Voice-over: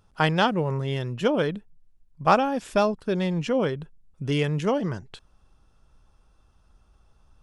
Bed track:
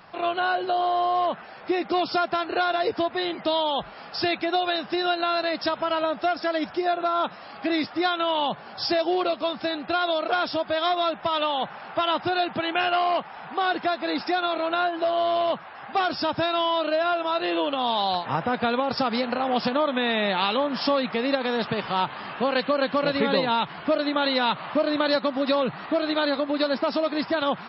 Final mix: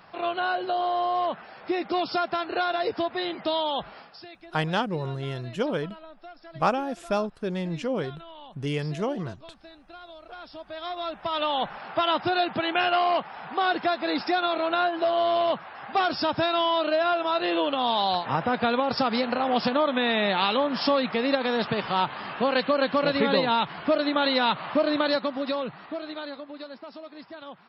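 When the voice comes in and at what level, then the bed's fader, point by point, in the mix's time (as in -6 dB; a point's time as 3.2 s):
4.35 s, -4.5 dB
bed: 3.97 s -2.5 dB
4.25 s -21 dB
10.21 s -21 dB
11.55 s 0 dB
24.91 s 0 dB
26.79 s -17.5 dB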